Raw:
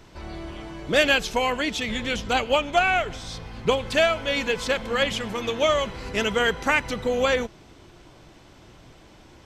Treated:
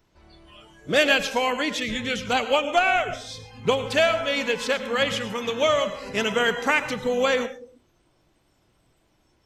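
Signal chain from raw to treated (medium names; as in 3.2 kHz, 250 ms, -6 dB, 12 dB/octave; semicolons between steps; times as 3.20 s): algorithmic reverb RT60 0.65 s, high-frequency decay 0.35×, pre-delay 65 ms, DRR 11 dB; spectral noise reduction 16 dB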